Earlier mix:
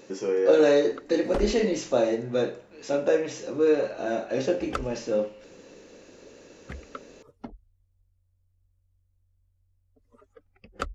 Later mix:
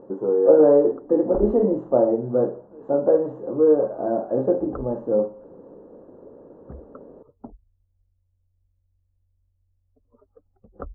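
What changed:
speech +5.0 dB; master: add inverse Chebyshev low-pass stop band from 2.1 kHz, stop band 40 dB

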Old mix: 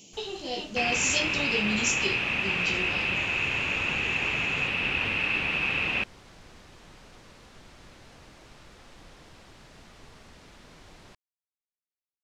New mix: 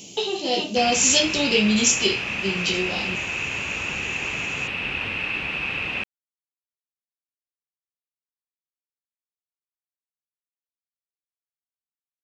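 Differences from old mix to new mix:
speech +10.0 dB; first sound: muted

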